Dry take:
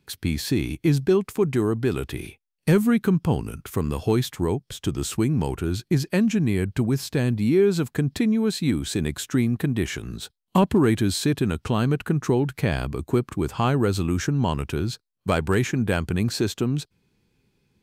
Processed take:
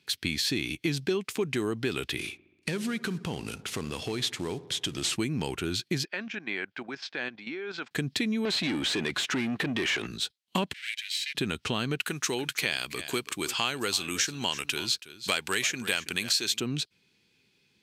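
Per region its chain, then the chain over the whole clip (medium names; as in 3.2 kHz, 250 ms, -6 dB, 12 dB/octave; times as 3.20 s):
2.19–5.16 s: CVSD coder 64 kbps + compression, threshold -23 dBFS + feedback echo behind a low-pass 65 ms, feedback 72%, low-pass 1.2 kHz, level -17 dB
6.05–7.91 s: cabinet simulation 440–4400 Hz, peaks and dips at 440 Hz -5 dB, 790 Hz +4 dB, 1.5 kHz +6 dB, 2.9 kHz -5 dB, 4.1 kHz -8 dB + level held to a coarse grid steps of 11 dB
8.45–10.07 s: compression 2:1, threshold -28 dBFS + overdrive pedal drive 25 dB, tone 1.2 kHz, clips at -15 dBFS
10.73–11.35 s: comb filter that takes the minimum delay 1.3 ms + steep high-pass 1.9 kHz 48 dB/octave + tilt EQ -3 dB/octave
11.99–16.60 s: tilt EQ +3 dB/octave + delay 327 ms -17 dB
whole clip: frequency weighting D; compression 3:1, threshold -23 dBFS; trim -3 dB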